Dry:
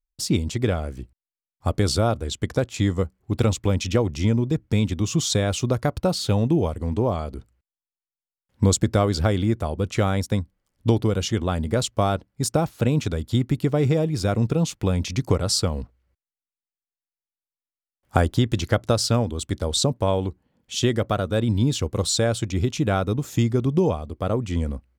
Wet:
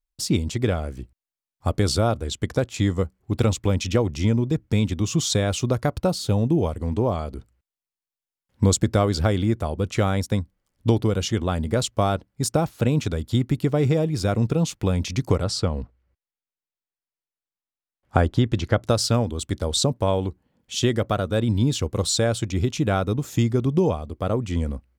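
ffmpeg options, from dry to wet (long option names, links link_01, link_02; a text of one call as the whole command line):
ffmpeg -i in.wav -filter_complex "[0:a]asettb=1/sr,asplit=3[link_01][link_02][link_03];[link_01]atrim=end=6.104[link_04];[link_02]atrim=start=6.1:end=6.58,asetpts=PTS-STARTPTS,afade=type=in:duration=0.004:curve=qsin,afade=type=out:start_time=0.476:duration=0.004:curve=qsin,equalizer=frequency=2100:width_type=o:width=2.5:gain=-5.5[link_05];[link_03]atrim=start=6.576[link_06];[link_04][link_05]acrossfade=duration=0.004:curve1=hsin:curve2=qsin[link_07];[link_07][link_06]acrossfade=duration=0.004:curve1=qsin:curve2=hsin,asettb=1/sr,asplit=3[link_08][link_09][link_10];[link_08]atrim=end=15.444[link_11];[link_09]atrim=start=15.44:end=18.83,asetpts=PTS-STARTPTS,afade=type=in:duration=0.004:curve=qsin,afade=type=out:start_time=3.386:duration=0.004:curve=qsin,aemphasis=mode=reproduction:type=50fm[link_12];[link_10]atrim=start=18.826[link_13];[link_11][link_12]acrossfade=duration=0.004:curve1=hsin:curve2=qsin[link_14];[link_14][link_13]acrossfade=duration=0.004:curve1=qsin:curve2=hsin" out.wav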